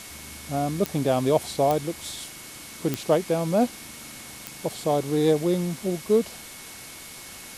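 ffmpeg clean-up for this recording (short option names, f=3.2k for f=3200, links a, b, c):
-af "adeclick=t=4,bandreject=f=2.2k:w=30,afwtdn=0.01"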